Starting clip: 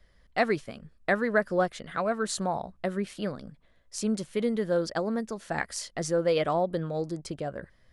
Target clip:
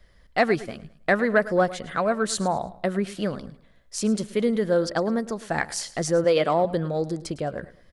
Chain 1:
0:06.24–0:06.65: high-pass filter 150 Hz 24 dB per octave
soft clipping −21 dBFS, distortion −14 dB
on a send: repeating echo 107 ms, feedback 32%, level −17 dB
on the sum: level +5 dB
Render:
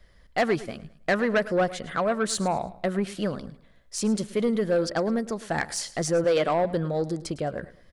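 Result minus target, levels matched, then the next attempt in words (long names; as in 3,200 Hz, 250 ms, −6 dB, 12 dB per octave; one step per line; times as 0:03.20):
soft clipping: distortion +16 dB
0:06.24–0:06.65: high-pass filter 150 Hz 24 dB per octave
soft clipping −10 dBFS, distortion −30 dB
on a send: repeating echo 107 ms, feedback 32%, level −17 dB
on the sum: level +5 dB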